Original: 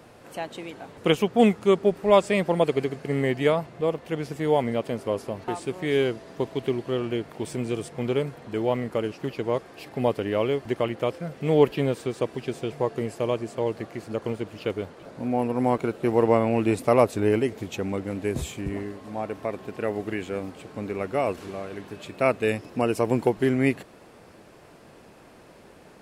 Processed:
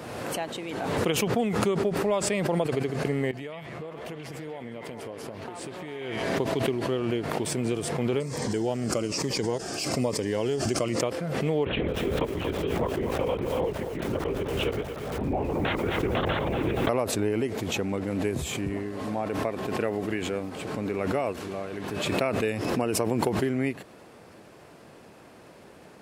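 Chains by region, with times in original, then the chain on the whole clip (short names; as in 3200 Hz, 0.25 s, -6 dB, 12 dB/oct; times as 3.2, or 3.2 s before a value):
3.31–6.39 compressor, threshold -36 dBFS + delay with a stepping band-pass 0.134 s, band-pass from 2600 Hz, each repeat -0.7 oct, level 0 dB
8.2–11.01 band shelf 6500 Hz +13.5 dB 1.1 oct + cascading phaser falling 1.1 Hz
11.65–16.89 wrapped overs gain 10.5 dB + LPC vocoder at 8 kHz whisper + lo-fi delay 0.234 s, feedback 35%, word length 7-bit, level -9.5 dB
whole clip: compressor 6:1, threshold -23 dBFS; HPF 62 Hz; backwards sustainer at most 28 dB/s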